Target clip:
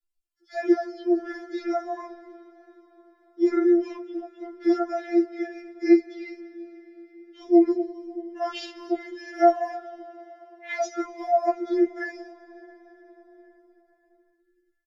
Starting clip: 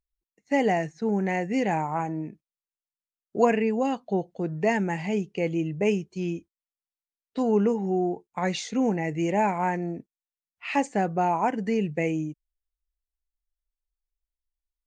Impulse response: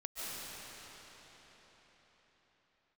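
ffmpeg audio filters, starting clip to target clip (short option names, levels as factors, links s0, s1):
-filter_complex "[0:a]asetrate=35002,aresample=44100,atempo=1.25992,acrossover=split=1500[s0][s1];[s0]adelay=40[s2];[s2][s1]amix=inputs=2:normalize=0,asplit=2[s3][s4];[1:a]atrim=start_sample=2205[s5];[s4][s5]afir=irnorm=-1:irlink=0,volume=0.126[s6];[s3][s6]amix=inputs=2:normalize=0,afftfilt=real='re*4*eq(mod(b,16),0)':imag='im*4*eq(mod(b,16),0)':win_size=2048:overlap=0.75,volume=1.19"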